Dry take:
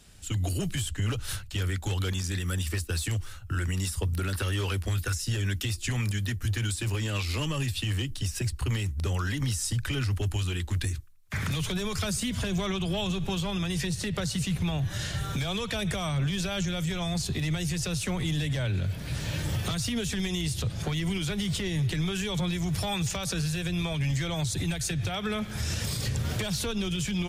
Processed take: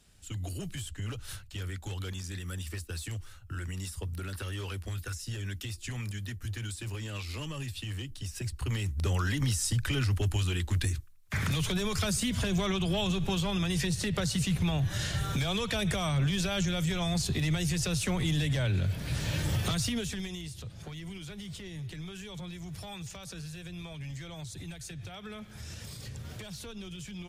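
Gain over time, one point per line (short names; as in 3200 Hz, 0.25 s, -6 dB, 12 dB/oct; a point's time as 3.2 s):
8.22 s -8 dB
9.09 s 0 dB
19.82 s 0 dB
20.53 s -12.5 dB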